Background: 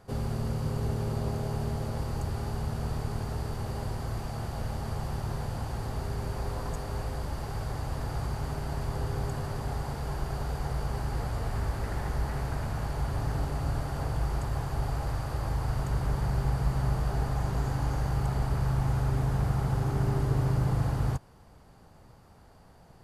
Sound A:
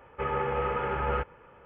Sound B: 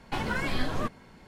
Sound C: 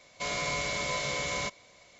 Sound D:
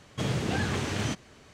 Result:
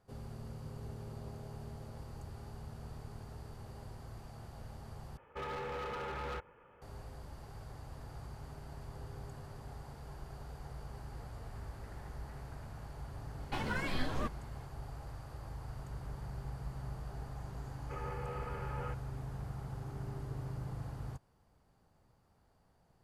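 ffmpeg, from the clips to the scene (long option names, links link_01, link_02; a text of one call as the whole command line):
ffmpeg -i bed.wav -i cue0.wav -i cue1.wav -filter_complex "[1:a]asplit=2[link_01][link_02];[0:a]volume=-15dB[link_03];[link_01]volume=30.5dB,asoftclip=hard,volume=-30.5dB[link_04];[link_03]asplit=2[link_05][link_06];[link_05]atrim=end=5.174[link_07];[link_04]atrim=end=1.65,asetpts=PTS-STARTPTS,volume=-7.5dB[link_08];[link_06]atrim=start=6.816[link_09];[2:a]atrim=end=1.27,asetpts=PTS-STARTPTS,volume=-6.5dB,afade=type=in:duration=0.004:curve=hsin,afade=type=out:start_time=1.266:duration=0.004:curve=hsin,adelay=13400[link_10];[link_02]atrim=end=1.65,asetpts=PTS-STARTPTS,volume=-14.5dB,afade=type=in:duration=0.004:curve=hsin,afade=type=out:start_time=1.646:duration=0.004:curve=hsin,adelay=17710[link_11];[link_07][link_08]acrossfade=duration=0.004:curve1=hsin:curve2=hsin[link_12];[link_12][link_09]acrossfade=duration=0.004:curve1=hsin:curve2=hsin[link_13];[link_13][link_10][link_11]amix=inputs=3:normalize=0" out.wav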